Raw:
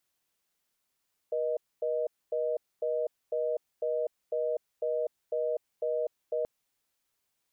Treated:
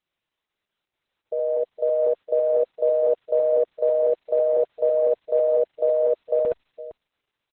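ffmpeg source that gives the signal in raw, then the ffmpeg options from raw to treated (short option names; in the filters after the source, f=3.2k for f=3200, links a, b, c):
-f lavfi -i "aevalsrc='0.0316*(sin(2*PI*480*t)+sin(2*PI*620*t))*clip(min(mod(t,0.5),0.25-mod(t,0.5))/0.005,0,1)':d=5.13:s=44100"
-af "aecho=1:1:56|68|70|76|461:0.126|0.501|0.668|0.178|0.237,dynaudnorm=f=340:g=9:m=11dB" -ar 48000 -c:a libopus -b:a 8k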